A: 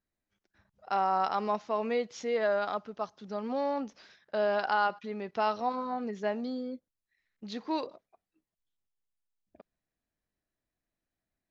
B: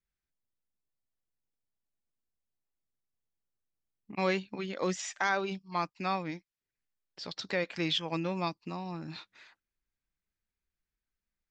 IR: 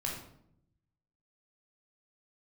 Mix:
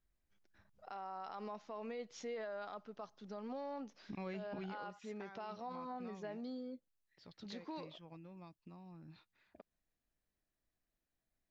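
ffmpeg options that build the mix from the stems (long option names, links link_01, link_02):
-filter_complex "[0:a]acompressor=threshold=-52dB:ratio=1.5,volume=-2.5dB[link_01];[1:a]aemphasis=mode=reproduction:type=bsi,acompressor=threshold=-34dB:ratio=6,volume=-5dB,afade=type=out:start_time=4.61:duration=0.26:silence=0.237137,asplit=2[link_02][link_03];[link_03]apad=whole_len=507165[link_04];[link_01][link_04]sidechaincompress=threshold=-52dB:ratio=8:attack=42:release=165[link_05];[link_05][link_02]amix=inputs=2:normalize=0,alimiter=level_in=12.5dB:limit=-24dB:level=0:latency=1:release=27,volume=-12.5dB"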